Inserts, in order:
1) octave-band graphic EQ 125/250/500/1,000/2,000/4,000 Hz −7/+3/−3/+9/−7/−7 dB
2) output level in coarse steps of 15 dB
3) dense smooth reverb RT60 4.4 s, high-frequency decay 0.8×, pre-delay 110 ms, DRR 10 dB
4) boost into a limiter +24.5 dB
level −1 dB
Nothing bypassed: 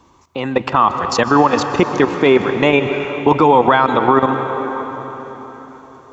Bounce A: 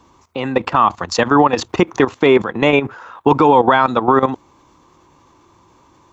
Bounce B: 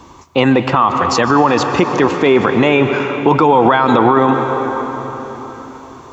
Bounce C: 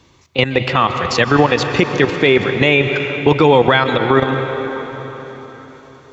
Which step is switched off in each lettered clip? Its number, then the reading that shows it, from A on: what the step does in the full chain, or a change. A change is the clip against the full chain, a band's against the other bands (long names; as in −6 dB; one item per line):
3, change in momentary loudness spread −8 LU
2, change in crest factor −2.0 dB
1, 1 kHz band −8.0 dB